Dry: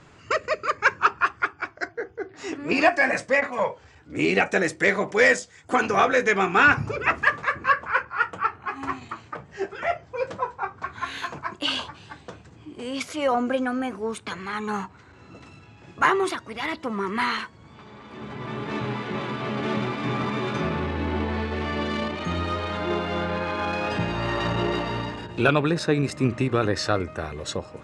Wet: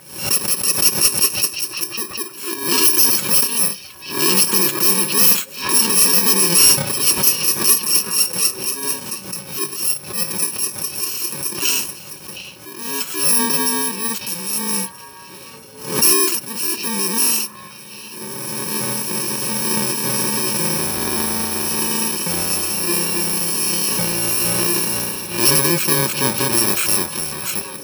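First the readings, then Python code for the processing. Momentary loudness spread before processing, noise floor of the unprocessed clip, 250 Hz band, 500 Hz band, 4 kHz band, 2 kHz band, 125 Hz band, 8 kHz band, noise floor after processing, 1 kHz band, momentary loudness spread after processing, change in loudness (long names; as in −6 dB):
13 LU, −51 dBFS, +2.0 dB, −1.5 dB, +14.0 dB, −3.0 dB, +0.5 dB, +27.5 dB, −38 dBFS, −2.5 dB, 13 LU, +9.0 dB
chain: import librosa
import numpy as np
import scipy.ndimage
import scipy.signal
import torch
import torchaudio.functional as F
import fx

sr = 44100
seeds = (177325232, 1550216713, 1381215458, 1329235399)

y = fx.bit_reversed(x, sr, seeds[0], block=64)
y = fx.highpass(y, sr, hz=320.0, slope=6)
y = y + 0.39 * np.pad(y, (int(5.4 * sr / 1000.0), 0))[:len(y)]
y = fx.transient(y, sr, attack_db=-3, sustain_db=3)
y = fx.echo_stepped(y, sr, ms=714, hz=3200.0, octaves=-1.4, feedback_pct=70, wet_db=-10.5)
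y = fx.fold_sine(y, sr, drive_db=5, ceiling_db=-6.0)
y = fx.pre_swell(y, sr, db_per_s=99.0)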